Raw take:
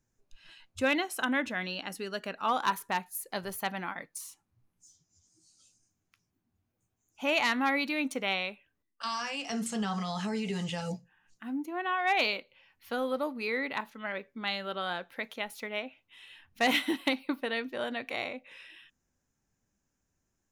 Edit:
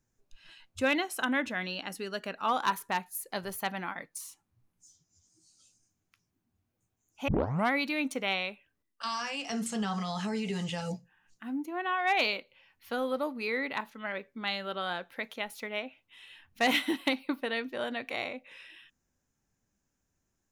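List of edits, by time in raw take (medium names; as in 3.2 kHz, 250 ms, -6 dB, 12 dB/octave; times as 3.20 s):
7.28 s: tape start 0.44 s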